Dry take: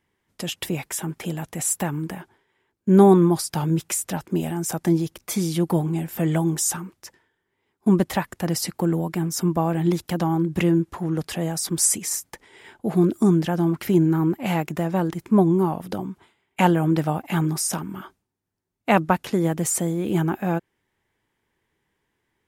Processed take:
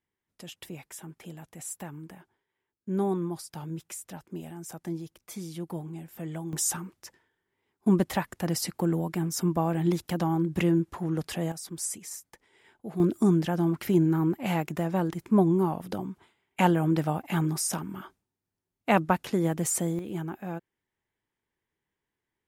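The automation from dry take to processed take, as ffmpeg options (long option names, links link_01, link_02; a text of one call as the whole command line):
ffmpeg -i in.wav -af "asetnsamples=nb_out_samples=441:pad=0,asendcmd='6.53 volume volume -4.5dB;11.52 volume volume -13.5dB;13 volume volume -4.5dB;19.99 volume volume -12dB',volume=-14.5dB" out.wav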